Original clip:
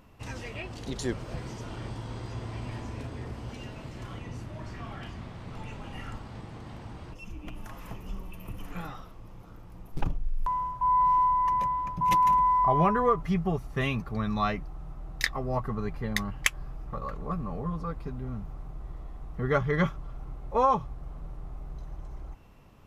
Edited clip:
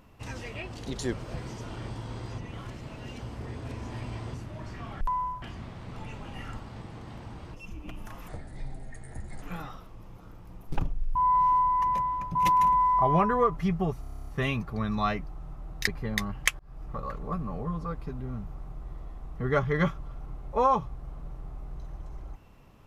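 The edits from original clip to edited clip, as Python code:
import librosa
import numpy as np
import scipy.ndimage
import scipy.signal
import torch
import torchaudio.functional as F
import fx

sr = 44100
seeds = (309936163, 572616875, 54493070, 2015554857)

y = fx.edit(x, sr, fx.reverse_span(start_s=2.38, length_s=1.96),
    fx.speed_span(start_s=7.87, length_s=0.8, speed=0.7),
    fx.move(start_s=10.4, length_s=0.41, to_s=5.01),
    fx.stutter(start_s=13.66, slice_s=0.03, count=10),
    fx.cut(start_s=15.26, length_s=0.6),
    fx.fade_in_span(start_s=16.58, length_s=0.25), tone=tone)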